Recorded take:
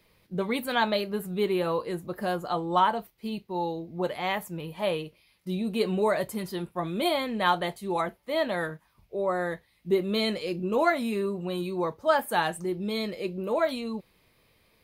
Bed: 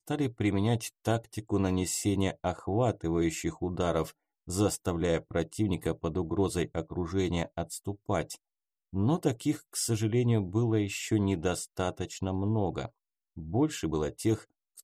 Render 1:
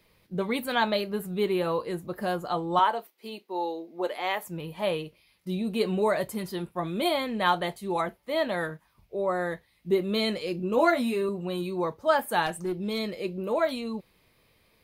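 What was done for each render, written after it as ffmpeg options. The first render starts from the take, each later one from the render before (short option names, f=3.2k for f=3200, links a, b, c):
-filter_complex "[0:a]asettb=1/sr,asplit=3[a][b][c];[a]atrim=end=2.794[d];[b]atrim=start=2.79:end=4.46,asetpts=PTS-STARTPTS,afade=t=in:d=0.004:c=qsin,afade=t=out:st=1.666:d=0.004:c=qsin,highpass=f=290:w=0.5412,highpass=f=290:w=1.3066[e];[c]atrim=start=4.456[f];[d][e]acrossfade=d=0.004:c1=hsin:c2=qsin[g];[g][f]acrossfade=d=0.004:c1=qsin:c2=hsin,asettb=1/sr,asplit=3[h][i][j];[h]atrim=end=10.764[k];[i]atrim=start=10.76:end=11.29,asetpts=PTS-STARTPTS,afade=t=in:d=0.004:c=qsin,afade=t=out:st=0.526:d=0.004:c=qsin,asplit=2[l][m];[m]adelay=12,volume=-3dB[n];[l][n]amix=inputs=2:normalize=0,atrim=end_sample=23373[o];[j]atrim=start=11.286[p];[k][o]acrossfade=d=0.004:c1=hsin:c2=qsin[q];[q][p]acrossfade=d=0.004:c1=qsin:c2=hsin,asettb=1/sr,asplit=3[r][s][t];[r]atrim=end=12.464[u];[s]atrim=start=12.46:end=12.99,asetpts=PTS-STARTPTS,afade=t=in:d=0.004:c=qsin,afade=t=out:st=0.526:d=0.004:c=qsin,aeval=exprs='clip(val(0),-1,0.0473)':c=same[v];[t]atrim=start=12.986[w];[u][v]acrossfade=d=0.004:c1=hsin:c2=qsin[x];[x][w]acrossfade=d=0.004:c1=qsin:c2=hsin"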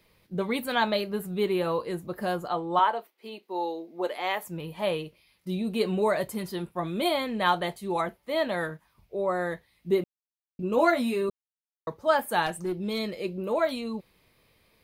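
-filter_complex "[0:a]asettb=1/sr,asplit=3[a][b][c];[a]atrim=end=2.484[d];[b]atrim=start=2.48:end=3.43,asetpts=PTS-STARTPTS,afade=t=in:d=0.004:c=qsin,afade=t=out:st=0.946:d=0.004:c=qsin,bass=f=250:g=-5,treble=f=4k:g=-7[e];[c]atrim=start=3.426[f];[d][e]acrossfade=d=0.004:c1=hsin:c2=qsin[g];[g][f]acrossfade=d=0.004:c1=qsin:c2=hsin,asplit=5[h][i][j][k][l];[h]atrim=end=10.04,asetpts=PTS-STARTPTS,afade=t=out:st=10.036:d=0.004:c=hsin[m];[i]atrim=start=10.04:end=10.59,asetpts=PTS-STARTPTS,volume=0[n];[j]atrim=start=10.59:end=11.3,asetpts=PTS-STARTPTS,afade=t=in:d=0.004:c=hsin,afade=t=out:st=0.706:d=0.004:c=hsin[o];[k]atrim=start=11.3:end=11.87,asetpts=PTS-STARTPTS,volume=0[p];[l]atrim=start=11.87,asetpts=PTS-STARTPTS,afade=t=in:d=0.004:c=hsin[q];[m][n][o][p][q]concat=n=5:v=0:a=1"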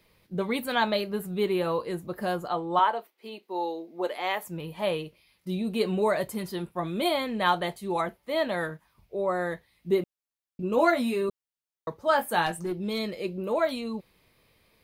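-filter_complex "[0:a]asettb=1/sr,asplit=3[a][b][c];[a]atrim=end=12.054[d];[b]atrim=start=12.05:end=12.71,asetpts=PTS-STARTPTS,afade=t=in:d=0.004:c=qsin,afade=t=out:st=0.656:d=0.004:c=qsin,asplit=2[e][f];[f]adelay=18,volume=-9dB[g];[e][g]amix=inputs=2:normalize=0,atrim=end_sample=29106[h];[c]atrim=start=12.706[i];[d][h]acrossfade=d=0.004:c1=hsin:c2=qsin[j];[j][i]acrossfade=d=0.004:c1=qsin:c2=hsin"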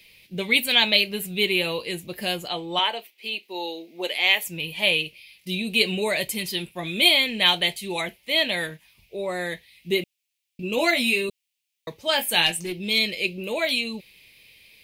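-af "highshelf=f=1.8k:t=q:w=3:g=11.5"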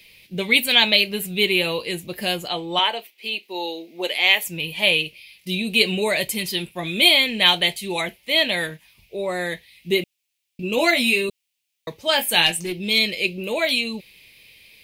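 -af "volume=3dB,alimiter=limit=-2dB:level=0:latency=1"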